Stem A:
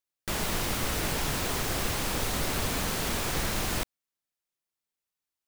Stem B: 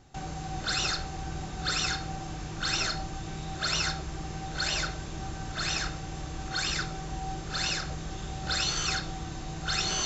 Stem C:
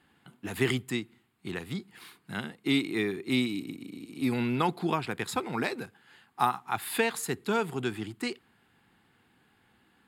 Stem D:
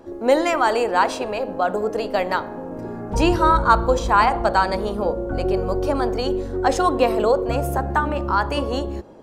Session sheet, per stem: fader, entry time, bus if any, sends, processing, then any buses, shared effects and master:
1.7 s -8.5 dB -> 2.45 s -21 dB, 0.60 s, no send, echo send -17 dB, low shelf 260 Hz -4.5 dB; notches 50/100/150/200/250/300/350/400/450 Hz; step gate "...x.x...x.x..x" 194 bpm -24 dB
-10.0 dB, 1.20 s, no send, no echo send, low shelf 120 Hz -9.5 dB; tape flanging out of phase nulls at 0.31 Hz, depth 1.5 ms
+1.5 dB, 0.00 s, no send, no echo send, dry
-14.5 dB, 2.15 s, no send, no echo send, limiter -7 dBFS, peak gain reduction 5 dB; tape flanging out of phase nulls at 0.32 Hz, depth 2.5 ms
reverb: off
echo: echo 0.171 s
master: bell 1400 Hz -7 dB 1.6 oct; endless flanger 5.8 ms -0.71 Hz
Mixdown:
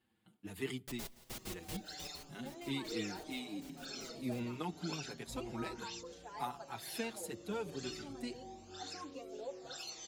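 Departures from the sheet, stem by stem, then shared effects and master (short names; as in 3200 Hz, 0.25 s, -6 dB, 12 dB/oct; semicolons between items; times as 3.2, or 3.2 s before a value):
stem C +1.5 dB -> -8.0 dB; stem D -14.5 dB -> -21.5 dB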